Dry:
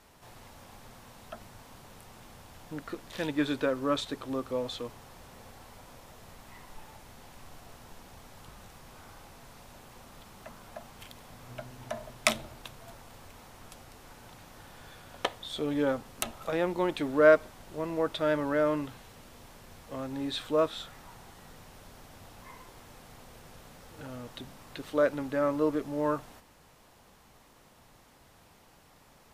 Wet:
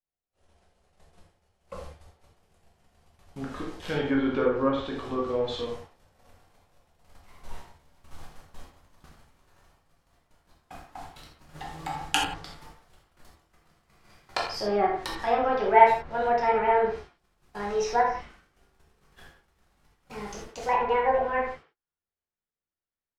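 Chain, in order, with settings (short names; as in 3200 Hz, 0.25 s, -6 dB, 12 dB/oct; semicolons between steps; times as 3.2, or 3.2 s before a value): speed glide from 73% -> 180%; treble ducked by the level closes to 1800 Hz, closed at -25.5 dBFS; gate -47 dBFS, range -45 dB; bell 71 Hz +9 dB 0.39 oct; speakerphone echo 0.1 s, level -9 dB; reverb, pre-delay 5 ms, DRR -2.5 dB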